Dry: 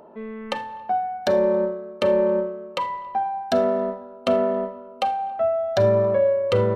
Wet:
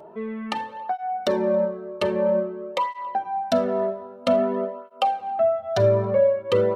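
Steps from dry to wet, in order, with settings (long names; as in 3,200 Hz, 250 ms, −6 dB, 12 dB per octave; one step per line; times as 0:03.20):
in parallel at −2.5 dB: downward compressor, threshold −28 dBFS, peak gain reduction 13 dB
on the sum: through-zero flanger with one copy inverted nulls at 0.51 Hz, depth 4.1 ms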